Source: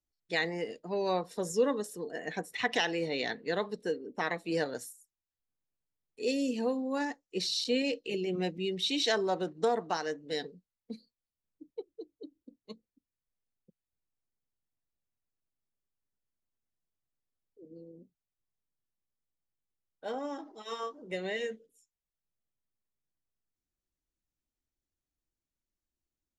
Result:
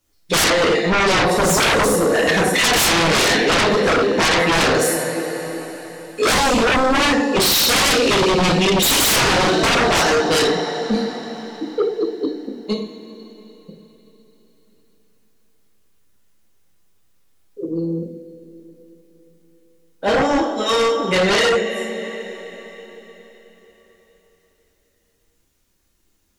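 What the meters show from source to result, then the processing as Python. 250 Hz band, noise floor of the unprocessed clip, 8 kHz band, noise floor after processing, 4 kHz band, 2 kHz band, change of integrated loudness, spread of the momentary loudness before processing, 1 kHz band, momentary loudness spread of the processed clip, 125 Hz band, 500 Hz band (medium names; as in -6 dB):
+16.0 dB, under -85 dBFS, +25.0 dB, -64 dBFS, +19.0 dB, +19.5 dB, +16.5 dB, 19 LU, +19.5 dB, 15 LU, +20.5 dB, +16.0 dB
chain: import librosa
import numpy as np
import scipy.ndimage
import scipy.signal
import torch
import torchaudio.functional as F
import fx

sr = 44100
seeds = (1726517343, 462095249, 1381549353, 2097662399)

y = fx.rev_double_slope(x, sr, seeds[0], early_s=0.48, late_s=4.2, knee_db=-18, drr_db=-4.5)
y = fx.fold_sine(y, sr, drive_db=19, ceiling_db=-9.5)
y = y * librosa.db_to_amplitude(-3.0)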